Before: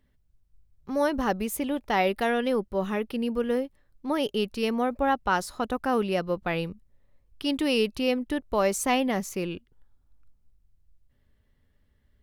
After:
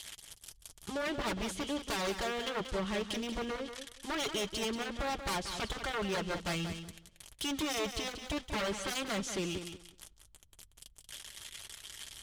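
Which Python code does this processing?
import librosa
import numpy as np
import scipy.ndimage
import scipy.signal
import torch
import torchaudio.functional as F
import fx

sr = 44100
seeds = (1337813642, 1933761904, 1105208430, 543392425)

y = x + 0.5 * 10.0 ** (-25.0 / 20.0) * np.diff(np.sign(x), prepend=np.sign(x[:1]))
y = fx.env_lowpass_down(y, sr, base_hz=2900.0, full_db=-21.0)
y = scipy.signal.sosfilt(scipy.signal.butter(4, 11000.0, 'lowpass', fs=sr, output='sos'), y)
y = fx.low_shelf(y, sr, hz=83.0, db=9.0)
y = fx.hpss(y, sr, part='harmonic', gain_db=-6)
y = fx.peak_eq(y, sr, hz=3200.0, db=9.5, octaves=0.25)
y = 10.0 ** (-28.0 / 20.0) * (np.abs((y / 10.0 ** (-28.0 / 20.0) + 3.0) % 4.0 - 2.0) - 1.0)
y = fx.notch_comb(y, sr, f0_hz=250.0)
y = fx.echo_feedback(y, sr, ms=184, feedback_pct=18, wet_db=-9.0)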